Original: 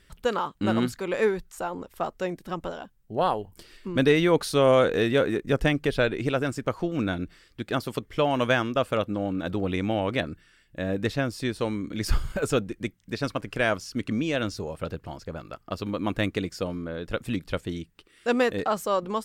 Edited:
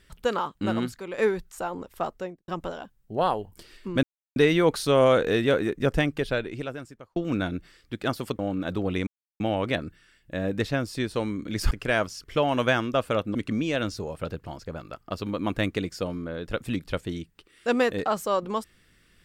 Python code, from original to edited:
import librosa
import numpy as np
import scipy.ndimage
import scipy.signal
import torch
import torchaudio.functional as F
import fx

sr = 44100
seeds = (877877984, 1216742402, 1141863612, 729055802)

y = fx.studio_fade_out(x, sr, start_s=2.07, length_s=0.41)
y = fx.edit(y, sr, fx.fade_out_to(start_s=0.42, length_s=0.76, floor_db=-8.0),
    fx.insert_silence(at_s=4.03, length_s=0.33),
    fx.fade_out_span(start_s=5.58, length_s=1.25),
    fx.move(start_s=8.06, length_s=1.11, to_s=13.95),
    fx.insert_silence(at_s=9.85, length_s=0.33),
    fx.cut(start_s=12.16, length_s=1.26), tone=tone)